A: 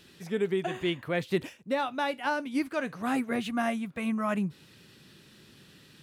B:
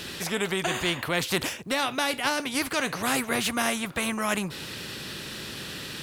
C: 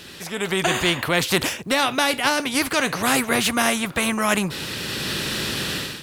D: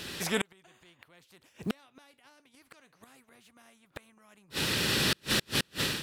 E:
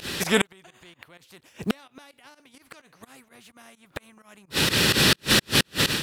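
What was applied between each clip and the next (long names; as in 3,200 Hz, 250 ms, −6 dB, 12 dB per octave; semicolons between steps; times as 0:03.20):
every bin compressed towards the loudest bin 2 to 1; level +5 dB
automatic gain control gain up to 15.5 dB; level −4 dB
gate with flip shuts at −15 dBFS, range −39 dB
fake sidechain pumping 128 BPM, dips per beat 2, −19 dB, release 92 ms; level +9 dB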